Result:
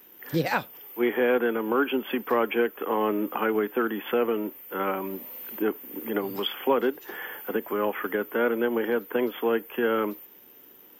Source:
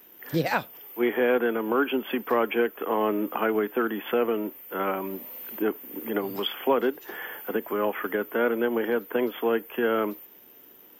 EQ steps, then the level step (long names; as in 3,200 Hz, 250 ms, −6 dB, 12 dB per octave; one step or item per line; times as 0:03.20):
notch filter 660 Hz, Q 12
0.0 dB